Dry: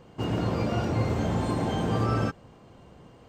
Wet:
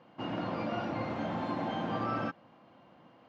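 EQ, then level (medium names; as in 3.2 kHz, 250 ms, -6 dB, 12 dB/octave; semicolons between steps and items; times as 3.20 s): band-pass 260–6600 Hz; distance through air 200 m; peaking EQ 420 Hz -15 dB 0.3 oct; -1.5 dB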